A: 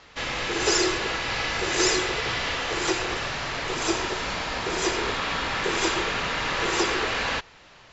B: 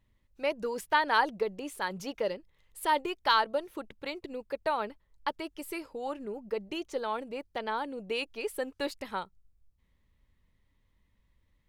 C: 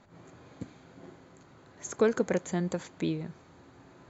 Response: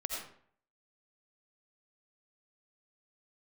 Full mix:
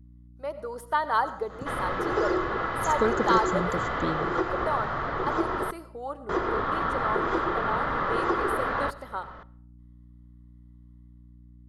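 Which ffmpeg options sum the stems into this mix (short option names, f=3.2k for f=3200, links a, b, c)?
-filter_complex "[0:a]lowpass=1.4k,acompressor=threshold=-44dB:ratio=1.5,adelay=1500,volume=0dB,asplit=3[a][b][c];[a]atrim=end=5.71,asetpts=PTS-STARTPTS,afade=t=out:st=5.706:d=0.004:c=hsin[d];[b]atrim=start=5.71:end=6.29,asetpts=PTS-STARTPTS,volume=0[e];[c]atrim=start=6.29,asetpts=PTS-STARTPTS,afade=t=in:d=0.004:c=hsin[f];[d][e][f]concat=n=3:v=0:a=1,asplit=2[g][h];[h]volume=-23dB[i];[1:a]equalizer=f=720:t=o:w=2.3:g=10.5,volume=-17dB,asplit=2[j][k];[k]volume=-11.5dB[l];[2:a]adelay=1000,volume=-7.5dB,asplit=2[m][n];[n]volume=-17dB[o];[3:a]atrim=start_sample=2205[p];[i][l][o]amix=inputs=3:normalize=0[q];[q][p]afir=irnorm=-1:irlink=0[r];[g][j][m][r]amix=inputs=4:normalize=0,superequalizer=10b=2:12b=0.398:16b=2.51,dynaudnorm=f=120:g=11:m=6dB,aeval=exprs='val(0)+0.00355*(sin(2*PI*60*n/s)+sin(2*PI*2*60*n/s)/2+sin(2*PI*3*60*n/s)/3+sin(2*PI*4*60*n/s)/4+sin(2*PI*5*60*n/s)/5)':c=same"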